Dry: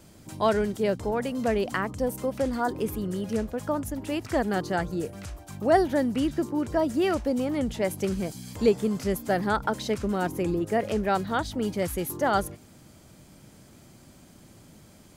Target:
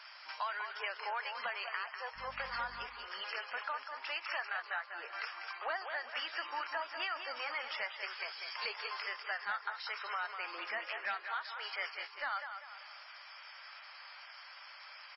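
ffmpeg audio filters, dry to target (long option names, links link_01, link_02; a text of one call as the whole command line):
ffmpeg -i in.wav -filter_complex "[0:a]asettb=1/sr,asplit=3[link_01][link_02][link_03];[link_01]atrim=end=4.484[link_04];[link_02]atrim=start=4.48:end=5.21,asetpts=PTS-STARTPTS,afade=type=in:duration=0.004:curve=qsin,afade=type=out:start_time=0.726:duration=0.004:curve=qsin,acrossover=split=2700[link_05][link_06];[link_06]acompressor=threshold=-56dB:ratio=4:attack=1:release=60[link_07];[link_05][link_07]amix=inputs=2:normalize=0[link_08];[link_03]atrim=start=5.206[link_09];[link_04][link_08]acrossfade=duration=0.004:curve1=hsin:curve2=qsin[link_10];[link_10][link_09]acrossfade=duration=0.004:curve1=qsin:curve2=hsin,highpass=frequency=1100:width=0.5412,highpass=frequency=1100:width=1.3066,equalizer=frequency=3700:width=3.2:gain=-11,acompressor=threshold=-47dB:ratio=8,asoftclip=type=tanh:threshold=-39.5dB,asettb=1/sr,asplit=3[link_11][link_12][link_13];[link_11]atrim=end=2.164[link_14];[link_12]atrim=start=2.16:end=2.86,asetpts=PTS-STARTPTS,afade=type=in:duration=0.004:curve=qsin,afade=type=out:start_time=0.696:duration=0.004:curve=qsin,aeval=exprs='val(0)+0.000355*(sin(2*PI*50*n/s)+sin(2*PI*2*50*n/s)/2+sin(2*PI*3*50*n/s)/3+sin(2*PI*4*50*n/s)/4+sin(2*PI*5*50*n/s)/5)':channel_layout=same[link_15];[link_13]atrim=start=2.856[link_16];[link_14][link_15]acrossfade=duration=0.004:curve1=hsin:curve2=qsin[link_17];[link_17][link_16]acrossfade=duration=0.004:curve1=qsin:curve2=hsin,asettb=1/sr,asplit=3[link_18][link_19][link_20];[link_18]atrim=end=10.604[link_21];[link_19]atrim=start=10.6:end=11.38,asetpts=PTS-STARTPTS,afade=type=in:duration=0.004:curve=qsin,afade=type=out:start_time=0.776:duration=0.004:curve=qsin,asplit=2[link_22][link_23];[link_23]adelay=15,volume=-13.5dB[link_24];[link_22][link_24]amix=inputs=2:normalize=0,atrim=end_sample=34398[link_25];[link_20]atrim=start=11.376[link_26];[link_21][link_25]acrossfade=duration=0.004:curve1=hsin:curve2=qsin[link_27];[link_27][link_26]acrossfade=duration=0.004:curve1=qsin:curve2=hsin,aecho=1:1:196|392|588|784|980:0.422|0.181|0.078|0.0335|0.0144,volume=12.5dB" -ar 16000 -c:a libmp3lame -b:a 16k out.mp3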